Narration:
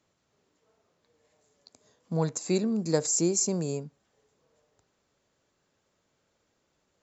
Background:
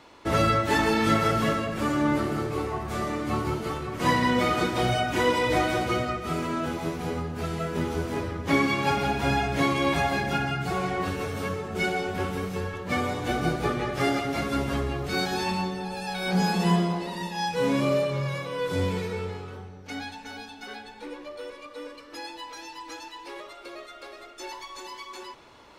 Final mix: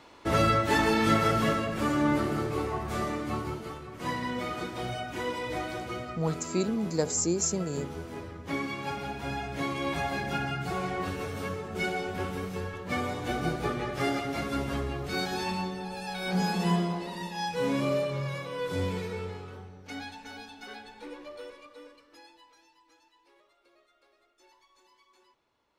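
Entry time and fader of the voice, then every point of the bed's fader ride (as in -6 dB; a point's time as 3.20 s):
4.05 s, -2.0 dB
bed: 3.02 s -1.5 dB
3.83 s -10 dB
9.29 s -10 dB
10.45 s -4 dB
21.38 s -4 dB
22.82 s -23.5 dB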